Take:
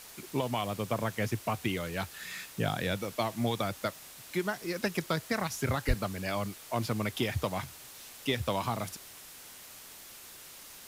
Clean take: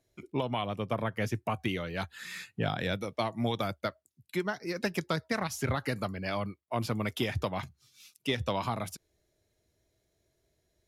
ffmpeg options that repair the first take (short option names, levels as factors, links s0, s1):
-filter_complex "[0:a]asplit=3[s0][s1][s2];[s0]afade=t=out:st=5.87:d=0.02[s3];[s1]highpass=f=140:w=0.5412,highpass=f=140:w=1.3066,afade=t=in:st=5.87:d=0.02,afade=t=out:st=5.99:d=0.02[s4];[s2]afade=t=in:st=5.99:d=0.02[s5];[s3][s4][s5]amix=inputs=3:normalize=0,afwtdn=0.004"